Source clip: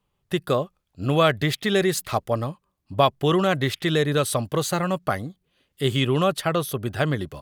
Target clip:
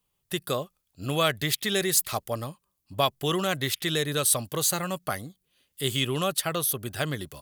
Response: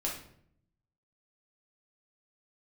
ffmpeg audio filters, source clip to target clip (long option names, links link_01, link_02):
-af "crystalizer=i=4:c=0,volume=-7.5dB"